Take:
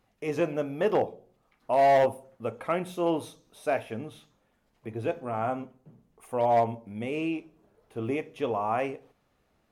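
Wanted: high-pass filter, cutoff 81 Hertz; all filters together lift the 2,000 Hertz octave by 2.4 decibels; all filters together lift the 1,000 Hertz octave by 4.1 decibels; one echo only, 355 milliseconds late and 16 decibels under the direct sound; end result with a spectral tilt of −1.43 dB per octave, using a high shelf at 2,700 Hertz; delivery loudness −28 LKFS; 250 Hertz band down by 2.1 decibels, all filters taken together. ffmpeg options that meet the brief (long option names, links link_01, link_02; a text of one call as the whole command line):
ffmpeg -i in.wav -af "highpass=81,equalizer=frequency=250:width_type=o:gain=-3.5,equalizer=frequency=1000:width_type=o:gain=7,equalizer=frequency=2000:width_type=o:gain=4.5,highshelf=frequency=2700:gain=-8.5,aecho=1:1:355:0.158,volume=-1.5dB" out.wav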